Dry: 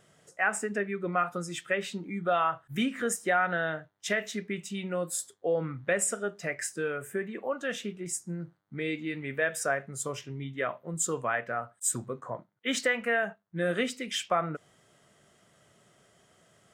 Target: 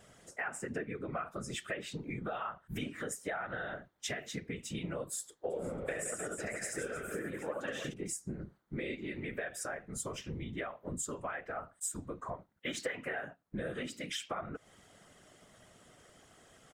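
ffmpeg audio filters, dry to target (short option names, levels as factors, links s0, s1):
-filter_complex "[0:a]asplit=3[s0][s1][s2];[s0]afade=t=out:st=5.5:d=0.02[s3];[s1]aecho=1:1:70|168|305.2|497.3|766.2:0.631|0.398|0.251|0.158|0.1,afade=t=in:st=5.5:d=0.02,afade=t=out:st=7.92:d=0.02[s4];[s2]afade=t=in:st=7.92:d=0.02[s5];[s3][s4][s5]amix=inputs=3:normalize=0,acompressor=threshold=0.0112:ratio=6,afftfilt=real='hypot(re,im)*cos(2*PI*random(0))':imag='hypot(re,im)*sin(2*PI*random(1))':win_size=512:overlap=0.75,volume=2.66"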